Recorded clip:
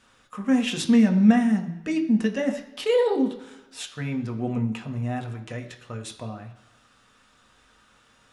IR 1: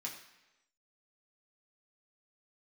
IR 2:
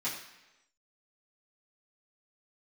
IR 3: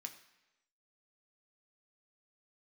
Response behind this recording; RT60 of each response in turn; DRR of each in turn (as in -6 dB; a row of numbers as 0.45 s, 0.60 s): 3; 1.0 s, 1.0 s, 1.0 s; -3.0 dB, -11.0 dB, 4.0 dB